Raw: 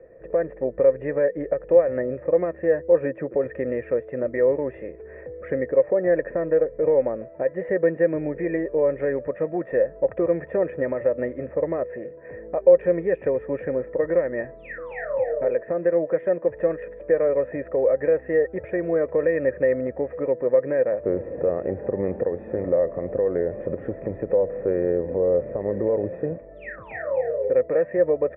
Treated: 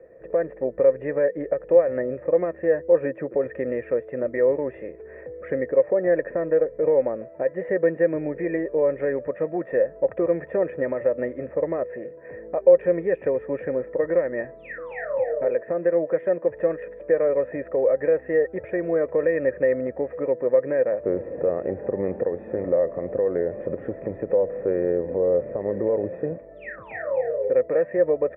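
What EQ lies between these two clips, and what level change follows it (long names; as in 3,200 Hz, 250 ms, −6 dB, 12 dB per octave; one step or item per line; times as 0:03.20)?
low-shelf EQ 83 Hz −9 dB
0.0 dB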